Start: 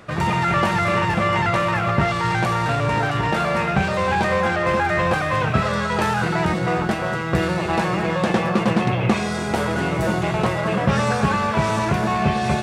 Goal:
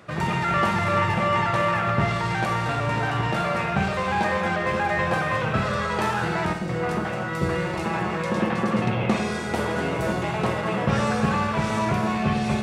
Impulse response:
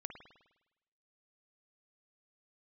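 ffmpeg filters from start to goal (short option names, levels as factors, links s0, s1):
-filter_complex "[0:a]highpass=59,asettb=1/sr,asplit=3[s0][s1][s2];[s0]atrim=end=6.534[s3];[s1]atrim=start=6.53:end=8.82,asetpts=PTS-STARTPTS,afade=t=in:d=0.004:c=qsin,afade=t=out:st=2.286:d=0.004:c=qsin,acrossover=split=640|3500[s4][s5][s6];[s4]adelay=80[s7];[s5]adelay=160[s8];[s7][s8][s6]amix=inputs=3:normalize=0,atrim=end_sample=100989[s9];[s2]atrim=start=8.816[s10];[s3][s9]acrossfade=d=0.004:c1=hsin:c2=qsin[s11];[s11][s10]acrossfade=d=0.004:c1=qsin:c2=hsin[s12];[1:a]atrim=start_sample=2205[s13];[s12][s13]afir=irnorm=-1:irlink=0"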